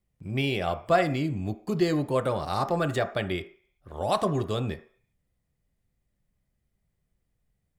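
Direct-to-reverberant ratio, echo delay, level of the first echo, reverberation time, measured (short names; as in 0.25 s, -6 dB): 8.0 dB, none, none, 0.50 s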